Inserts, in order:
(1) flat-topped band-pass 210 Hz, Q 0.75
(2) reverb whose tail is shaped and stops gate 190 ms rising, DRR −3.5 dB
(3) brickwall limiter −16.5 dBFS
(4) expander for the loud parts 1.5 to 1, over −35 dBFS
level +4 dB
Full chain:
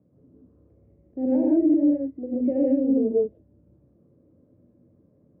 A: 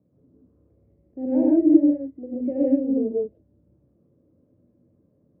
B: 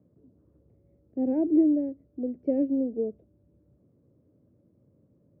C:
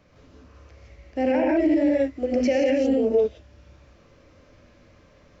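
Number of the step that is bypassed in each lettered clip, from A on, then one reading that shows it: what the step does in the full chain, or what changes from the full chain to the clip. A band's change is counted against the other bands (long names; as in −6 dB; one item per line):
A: 3, change in crest factor +8.0 dB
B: 2, change in momentary loudness spread +3 LU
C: 1, change in momentary loudness spread −4 LU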